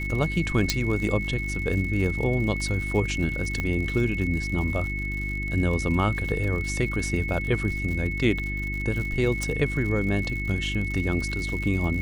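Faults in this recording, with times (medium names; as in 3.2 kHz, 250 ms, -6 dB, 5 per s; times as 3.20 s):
crackle 93 per s -32 dBFS
hum 50 Hz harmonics 7 -31 dBFS
whine 2.2 kHz -31 dBFS
0.70 s: pop -7 dBFS
3.60 s: pop -15 dBFS
9.43 s: pop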